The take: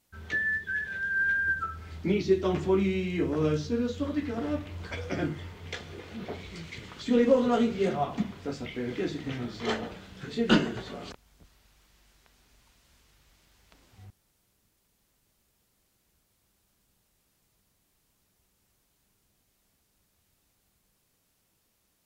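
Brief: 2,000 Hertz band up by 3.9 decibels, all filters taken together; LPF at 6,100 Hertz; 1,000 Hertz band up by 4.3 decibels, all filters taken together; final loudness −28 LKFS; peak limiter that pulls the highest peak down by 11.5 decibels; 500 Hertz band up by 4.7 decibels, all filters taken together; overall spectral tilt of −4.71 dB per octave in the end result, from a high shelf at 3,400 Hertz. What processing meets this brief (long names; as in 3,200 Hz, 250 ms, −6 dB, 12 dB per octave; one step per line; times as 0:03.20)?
low-pass filter 6,100 Hz
parametric band 500 Hz +5 dB
parametric band 1,000 Hz +3.5 dB
parametric band 2,000 Hz +5.5 dB
high-shelf EQ 3,400 Hz −8.5 dB
brickwall limiter −17 dBFS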